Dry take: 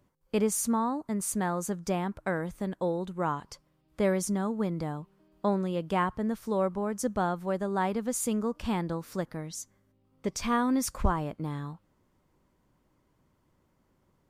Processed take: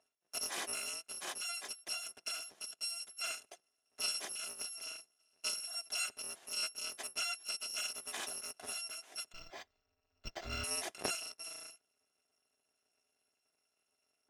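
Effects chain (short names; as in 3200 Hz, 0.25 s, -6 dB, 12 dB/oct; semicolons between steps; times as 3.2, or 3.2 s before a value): FFT order left unsorted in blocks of 256 samples; speaker cabinet 320–9400 Hz, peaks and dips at 400 Hz +5 dB, 680 Hz +9 dB, 1600 Hz +3 dB, 4500 Hz -6 dB, 7900 Hz -7 dB; 9.32–10.64 decimation joined by straight lines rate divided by 4×; gain -4.5 dB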